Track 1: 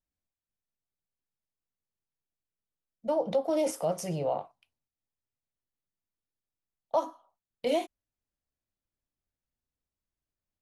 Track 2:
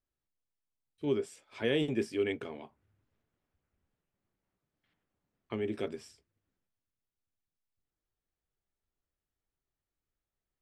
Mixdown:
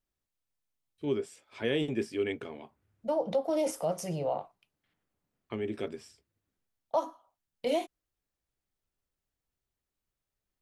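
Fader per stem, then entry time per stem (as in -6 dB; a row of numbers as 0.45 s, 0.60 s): -1.5 dB, 0.0 dB; 0.00 s, 0.00 s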